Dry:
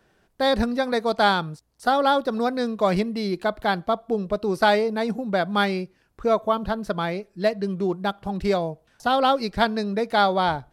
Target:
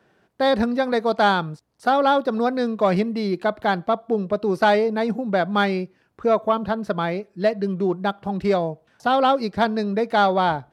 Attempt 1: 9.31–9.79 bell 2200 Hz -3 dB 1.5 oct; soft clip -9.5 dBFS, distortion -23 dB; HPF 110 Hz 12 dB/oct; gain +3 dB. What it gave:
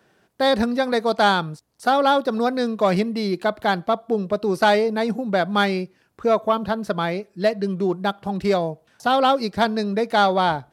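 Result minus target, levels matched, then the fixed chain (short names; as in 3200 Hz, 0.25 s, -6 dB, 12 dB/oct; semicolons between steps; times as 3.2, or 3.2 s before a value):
8000 Hz band +6.5 dB
9.31–9.79 bell 2200 Hz -3 dB 1.5 oct; soft clip -9.5 dBFS, distortion -23 dB; HPF 110 Hz 12 dB/oct; high shelf 4700 Hz -10 dB; gain +3 dB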